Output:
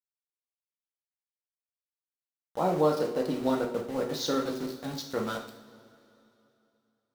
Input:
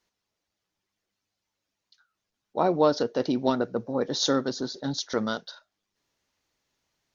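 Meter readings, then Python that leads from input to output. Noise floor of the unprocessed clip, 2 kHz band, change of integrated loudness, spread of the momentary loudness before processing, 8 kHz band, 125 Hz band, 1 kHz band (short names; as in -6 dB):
-84 dBFS, -3.5 dB, -3.0 dB, 9 LU, n/a, -2.0 dB, -3.0 dB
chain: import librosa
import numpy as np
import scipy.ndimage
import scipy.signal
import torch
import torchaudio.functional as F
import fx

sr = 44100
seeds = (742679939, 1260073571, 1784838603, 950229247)

y = fx.high_shelf(x, sr, hz=4800.0, db=-7.0)
y = np.where(np.abs(y) >= 10.0 ** (-34.5 / 20.0), y, 0.0)
y = fx.rev_double_slope(y, sr, seeds[0], early_s=0.5, late_s=2.9, knee_db=-18, drr_db=1.0)
y = y * librosa.db_to_amplitude(-5.5)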